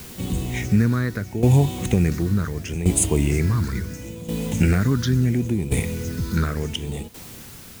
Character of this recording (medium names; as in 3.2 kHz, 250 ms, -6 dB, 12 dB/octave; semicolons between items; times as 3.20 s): phasing stages 6, 0.75 Hz, lowest notch 740–1500 Hz; a quantiser's noise floor 8-bit, dither triangular; tremolo saw down 0.7 Hz, depth 75%; Vorbis